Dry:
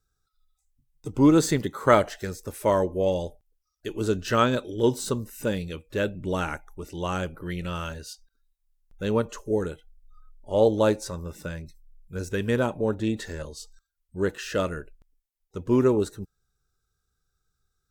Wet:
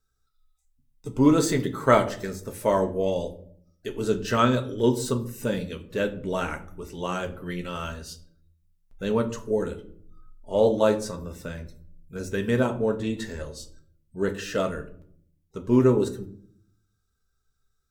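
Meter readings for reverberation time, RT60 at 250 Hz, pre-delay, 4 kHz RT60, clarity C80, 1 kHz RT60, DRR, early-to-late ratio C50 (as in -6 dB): 0.60 s, 0.90 s, 4 ms, 0.35 s, 18.0 dB, 0.50 s, 4.0 dB, 14.5 dB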